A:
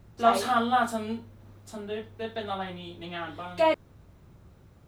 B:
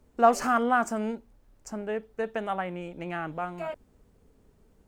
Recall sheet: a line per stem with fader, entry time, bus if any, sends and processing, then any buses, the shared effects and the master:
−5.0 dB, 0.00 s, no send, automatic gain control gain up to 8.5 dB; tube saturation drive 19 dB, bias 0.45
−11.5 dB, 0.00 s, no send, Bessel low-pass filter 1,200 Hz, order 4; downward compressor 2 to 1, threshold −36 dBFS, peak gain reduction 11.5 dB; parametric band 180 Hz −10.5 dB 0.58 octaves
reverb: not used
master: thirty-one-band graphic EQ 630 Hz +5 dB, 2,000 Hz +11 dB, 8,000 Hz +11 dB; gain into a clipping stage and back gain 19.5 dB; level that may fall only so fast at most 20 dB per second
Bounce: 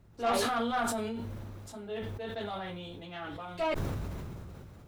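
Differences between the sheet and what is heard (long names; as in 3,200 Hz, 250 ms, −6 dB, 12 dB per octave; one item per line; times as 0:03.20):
stem A: missing automatic gain control gain up to 8.5 dB
master: missing thirty-one-band graphic EQ 630 Hz +5 dB, 2,000 Hz +11 dB, 8,000 Hz +11 dB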